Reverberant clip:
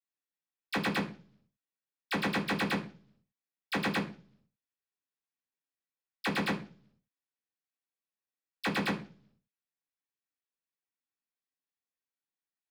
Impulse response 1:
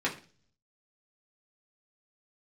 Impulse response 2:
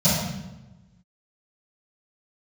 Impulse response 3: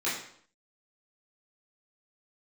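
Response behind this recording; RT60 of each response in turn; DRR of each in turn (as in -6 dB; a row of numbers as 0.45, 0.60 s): 1; 0.40, 1.0, 0.60 s; -5.0, -16.5, -10.0 dB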